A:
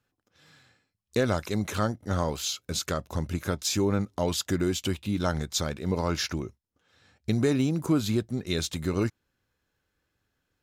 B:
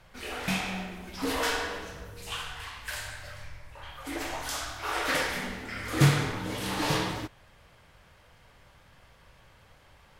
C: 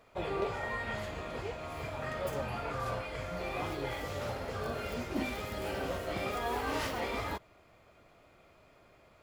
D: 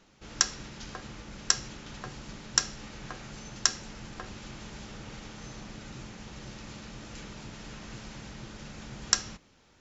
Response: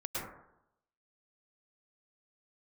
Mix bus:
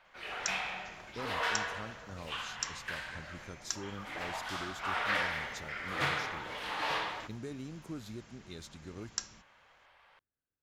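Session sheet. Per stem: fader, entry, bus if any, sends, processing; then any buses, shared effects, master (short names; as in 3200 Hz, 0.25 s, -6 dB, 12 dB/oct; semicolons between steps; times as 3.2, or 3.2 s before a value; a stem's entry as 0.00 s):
-18.5 dB, 0.00 s, no send, low-pass opened by the level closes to 2300 Hz, open at -24.5 dBFS
-1.5 dB, 0.00 s, no send, three-band isolator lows -21 dB, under 560 Hz, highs -18 dB, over 3900 Hz
-18.5 dB, 0.00 s, no send, compressor 3:1, threshold -38 dBFS, peak gain reduction 8 dB
-15.0 dB, 0.05 s, no send, high shelf 9000 Hz +11.5 dB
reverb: off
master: dry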